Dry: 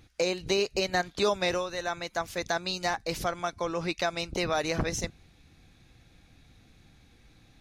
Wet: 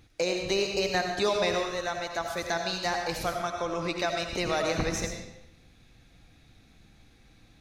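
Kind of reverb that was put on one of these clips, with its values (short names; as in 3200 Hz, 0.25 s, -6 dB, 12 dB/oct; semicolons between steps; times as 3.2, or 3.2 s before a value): digital reverb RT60 0.86 s, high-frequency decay 0.9×, pre-delay 45 ms, DRR 3 dB; gain -1 dB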